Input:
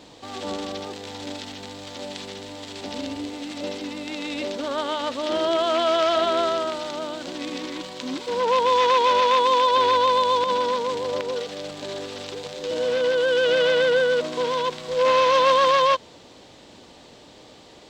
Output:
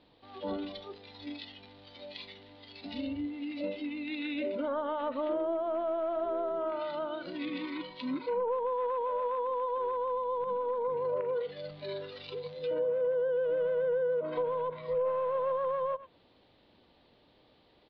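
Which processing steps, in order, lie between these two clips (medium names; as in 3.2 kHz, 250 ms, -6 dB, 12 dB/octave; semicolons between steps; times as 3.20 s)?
bass shelf 73 Hz +7.5 dB; in parallel at -5 dB: saturation -25 dBFS, distortion -7 dB; on the sum: spectral noise reduction 14 dB; compression 3:1, threshold -20 dBFS, peak gain reduction 5.5 dB; on a send: delay 100 ms -20 dB; on the sum: low-pass that closes with the level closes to 760 Hz, closed at -19.5 dBFS; steep low-pass 4.4 kHz 48 dB/octave; trim -6.5 dB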